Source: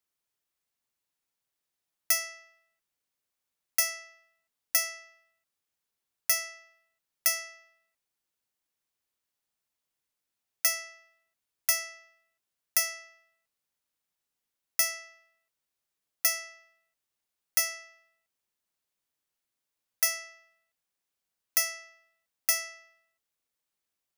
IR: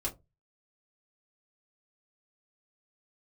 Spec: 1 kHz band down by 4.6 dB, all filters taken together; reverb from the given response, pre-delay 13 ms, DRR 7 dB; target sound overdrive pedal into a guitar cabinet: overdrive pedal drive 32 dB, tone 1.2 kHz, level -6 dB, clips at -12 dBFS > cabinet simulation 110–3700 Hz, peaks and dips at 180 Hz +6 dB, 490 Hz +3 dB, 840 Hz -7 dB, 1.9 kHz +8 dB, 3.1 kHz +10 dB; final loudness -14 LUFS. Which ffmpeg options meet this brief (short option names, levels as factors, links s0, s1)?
-filter_complex "[0:a]equalizer=f=1000:t=o:g=-8.5,asplit=2[s0][s1];[1:a]atrim=start_sample=2205,adelay=13[s2];[s1][s2]afir=irnorm=-1:irlink=0,volume=0.335[s3];[s0][s3]amix=inputs=2:normalize=0,asplit=2[s4][s5];[s5]highpass=f=720:p=1,volume=39.8,asoftclip=type=tanh:threshold=0.251[s6];[s4][s6]amix=inputs=2:normalize=0,lowpass=f=1200:p=1,volume=0.501,highpass=110,equalizer=f=180:t=q:w=4:g=6,equalizer=f=490:t=q:w=4:g=3,equalizer=f=840:t=q:w=4:g=-7,equalizer=f=1900:t=q:w=4:g=8,equalizer=f=3100:t=q:w=4:g=10,lowpass=f=3700:w=0.5412,lowpass=f=3700:w=1.3066,volume=3.98"